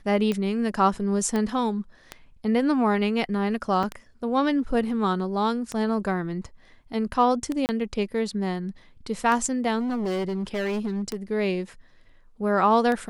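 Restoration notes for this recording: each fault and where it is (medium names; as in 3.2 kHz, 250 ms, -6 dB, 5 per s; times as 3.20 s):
tick 33 1/3 rpm -15 dBFS
1.36 s: pop -15 dBFS
3.83 s: dropout 4.5 ms
7.66–7.69 s: dropout 29 ms
9.79–11.16 s: clipped -24 dBFS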